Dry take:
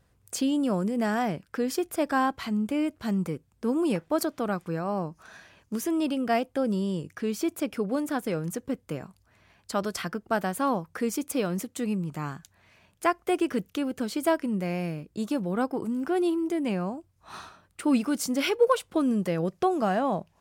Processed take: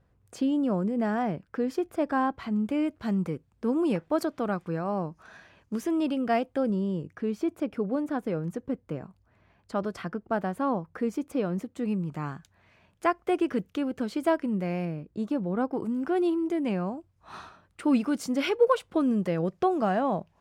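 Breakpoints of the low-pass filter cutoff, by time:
low-pass filter 6 dB per octave
1,300 Hz
from 0:02.56 2,800 Hz
from 0:06.70 1,100 Hz
from 0:11.85 2,400 Hz
from 0:14.85 1,200 Hz
from 0:15.73 2,900 Hz

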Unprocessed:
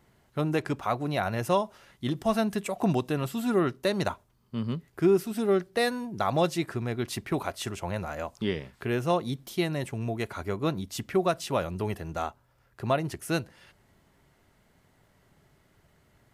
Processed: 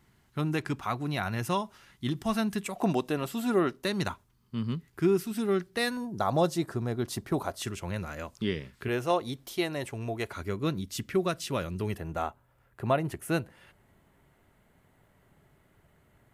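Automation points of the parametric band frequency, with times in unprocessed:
parametric band −9.5 dB 0.93 octaves
570 Hz
from 0:02.75 110 Hz
from 0:03.84 600 Hz
from 0:05.97 2,400 Hz
from 0:07.62 740 Hz
from 0:08.88 170 Hz
from 0:10.33 760 Hz
from 0:11.98 5,200 Hz

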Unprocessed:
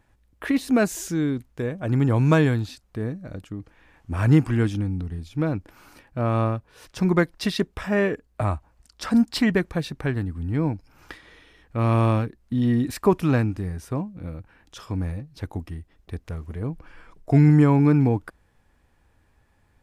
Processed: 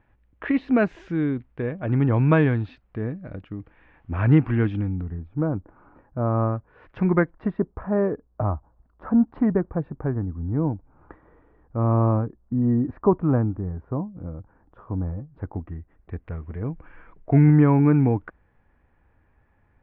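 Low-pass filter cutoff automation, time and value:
low-pass filter 24 dB per octave
0:04.84 2,700 Hz
0:05.34 1,300 Hz
0:06.32 1,300 Hz
0:07.04 2,400 Hz
0:07.55 1,200 Hz
0:15.07 1,200 Hz
0:16.31 2,300 Hz

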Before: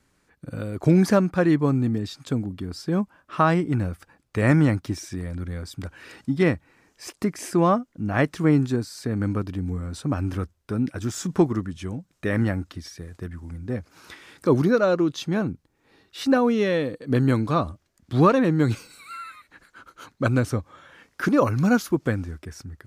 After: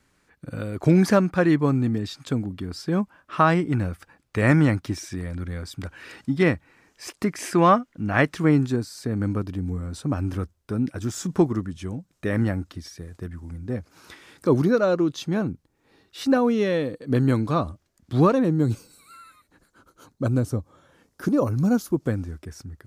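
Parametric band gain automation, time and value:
parametric band 2,100 Hz 2.2 octaves
0:07.17 +2.5 dB
0:07.69 +9.5 dB
0:08.95 −2.5 dB
0:18.17 −2.5 dB
0:18.62 −13.5 dB
0:21.75 −13.5 dB
0:22.31 −4 dB

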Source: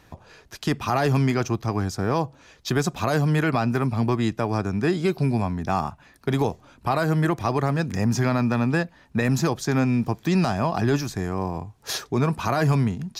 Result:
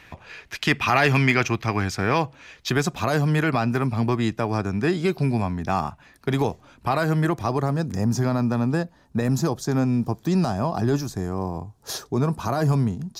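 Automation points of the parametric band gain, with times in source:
parametric band 2,300 Hz 1.3 octaves
0:02.22 +14 dB
0:03.00 +2 dB
0:07.07 +2 dB
0:07.80 −9.5 dB

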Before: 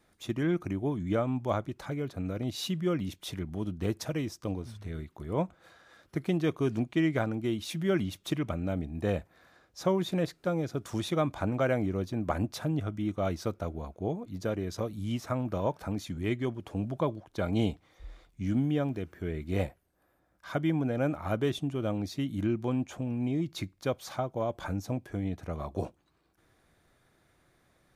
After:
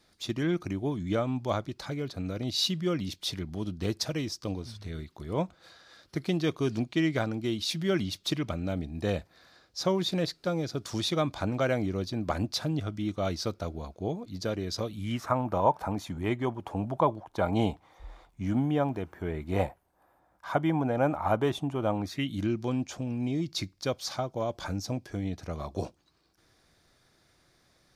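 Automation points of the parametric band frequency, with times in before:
parametric band +12.5 dB 0.88 octaves
0:14.80 4,600 Hz
0:15.35 880 Hz
0:21.98 880 Hz
0:22.40 5,000 Hz

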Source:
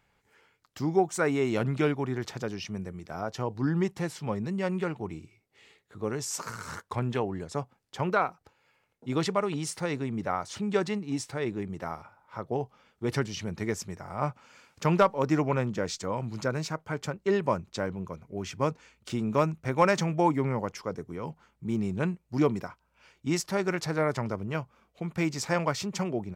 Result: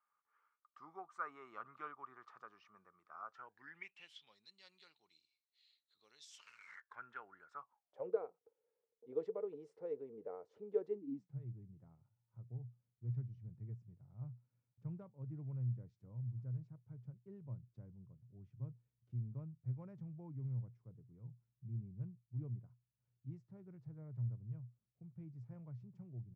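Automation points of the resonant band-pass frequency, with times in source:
resonant band-pass, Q 14
0:03.27 1,200 Hz
0:04.35 4,100 Hz
0:06.13 4,100 Hz
0:07.03 1,400 Hz
0:07.54 1,400 Hz
0:08.08 460 Hz
0:10.87 460 Hz
0:11.41 120 Hz

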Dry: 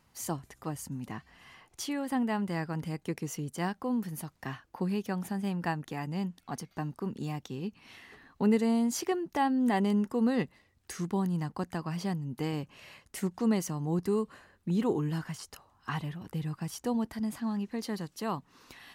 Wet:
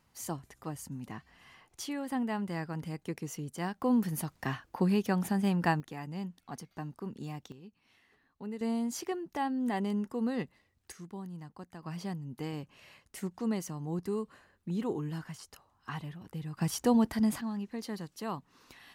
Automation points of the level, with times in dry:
−3 dB
from 0:03.82 +4 dB
from 0:05.80 −5 dB
from 0:07.52 −15 dB
from 0:08.61 −5 dB
from 0:10.92 −12.5 dB
from 0:11.83 −5 dB
from 0:16.57 +5.5 dB
from 0:17.41 −3.5 dB

